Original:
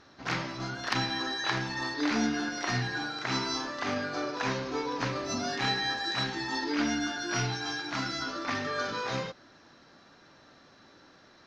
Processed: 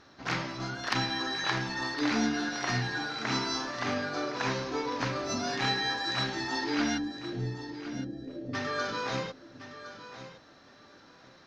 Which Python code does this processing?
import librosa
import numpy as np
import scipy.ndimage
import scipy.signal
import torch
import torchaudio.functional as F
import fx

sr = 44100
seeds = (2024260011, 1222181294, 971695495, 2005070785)

p1 = fx.ellip_lowpass(x, sr, hz=560.0, order=4, stop_db=40, at=(6.97, 8.53), fade=0.02)
y = p1 + fx.echo_feedback(p1, sr, ms=1063, feedback_pct=18, wet_db=-13, dry=0)